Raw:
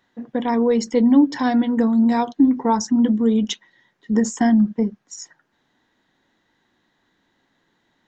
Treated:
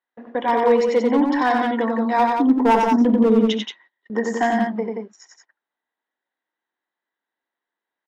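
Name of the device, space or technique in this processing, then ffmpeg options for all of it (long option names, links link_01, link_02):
walkie-talkie: -filter_complex "[0:a]asplit=3[link_01][link_02][link_03];[link_01]afade=type=out:start_time=2.44:duration=0.02[link_04];[link_02]tiltshelf=frequency=970:gain=9,afade=type=in:start_time=2.44:duration=0.02,afade=type=out:start_time=3.46:duration=0.02[link_05];[link_03]afade=type=in:start_time=3.46:duration=0.02[link_06];[link_04][link_05][link_06]amix=inputs=3:normalize=0,highpass=520,lowpass=2700,asoftclip=type=hard:threshold=-16.5dB,agate=range=-24dB:threshold=-50dB:ratio=16:detection=peak,aecho=1:1:66|92|178:0.133|0.668|0.562,volume=5dB"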